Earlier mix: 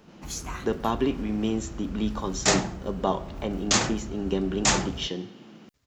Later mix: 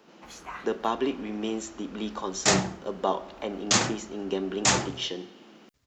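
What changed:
speech: add HPF 300 Hz 12 dB/oct; first sound: add three-band isolator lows -20 dB, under 430 Hz, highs -15 dB, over 3100 Hz

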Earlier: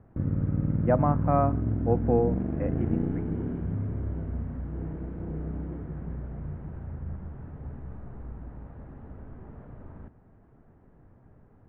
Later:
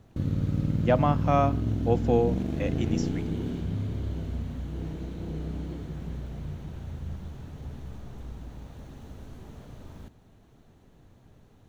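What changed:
speech: remove air absorption 290 m; master: remove inverse Chebyshev low-pass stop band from 5800 Hz, stop band 60 dB

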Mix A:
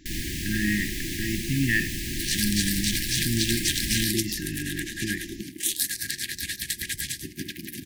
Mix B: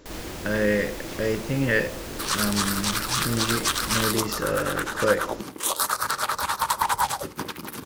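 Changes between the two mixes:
first sound -7.0 dB; master: remove brick-wall FIR band-stop 380–1600 Hz

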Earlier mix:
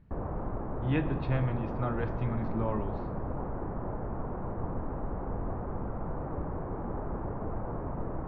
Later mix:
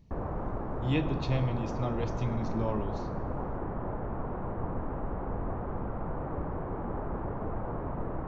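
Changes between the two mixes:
speech: add bell 1500 Hz -15 dB 0.54 oct; master: remove air absorption 400 m

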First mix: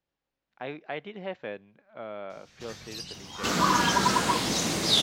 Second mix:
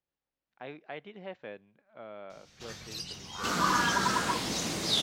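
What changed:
speech -6.5 dB; second sound -5.5 dB

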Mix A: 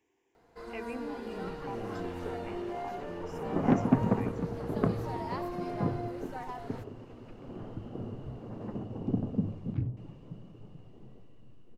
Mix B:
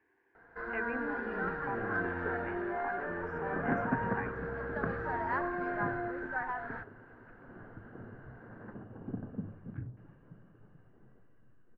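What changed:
second sound -9.5 dB; master: add synth low-pass 1600 Hz, resonance Q 9.1

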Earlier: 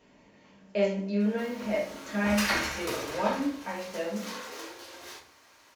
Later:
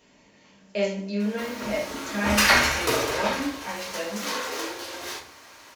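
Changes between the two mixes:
speech: add high shelf 3000 Hz +10.5 dB; background +10.0 dB

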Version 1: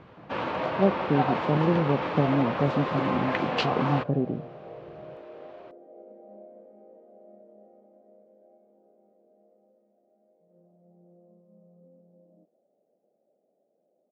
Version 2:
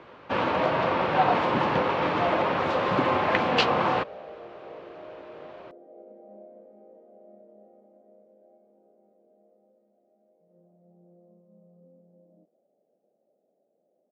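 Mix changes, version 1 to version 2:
speech: muted; first sound +5.0 dB

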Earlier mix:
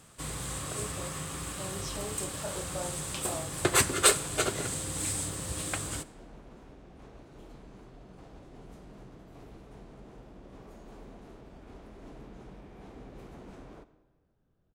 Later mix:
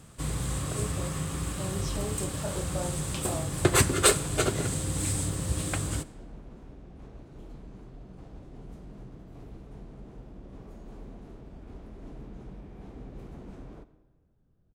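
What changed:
second sound -3.0 dB; master: add low shelf 320 Hz +10 dB

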